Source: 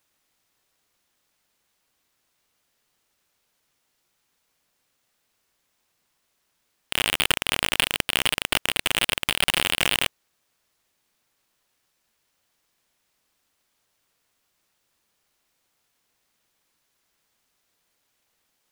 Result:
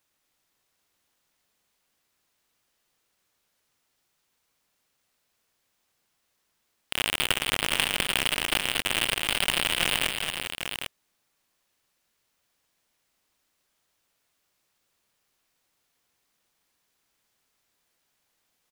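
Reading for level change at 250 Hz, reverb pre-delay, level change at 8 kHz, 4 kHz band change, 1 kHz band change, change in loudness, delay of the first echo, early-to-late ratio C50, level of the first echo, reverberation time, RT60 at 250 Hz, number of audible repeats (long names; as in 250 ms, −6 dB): −2.0 dB, no reverb audible, −2.0 dB, −2.0 dB, −2.0 dB, −2.5 dB, 227 ms, no reverb audible, −7.5 dB, no reverb audible, no reverb audible, 3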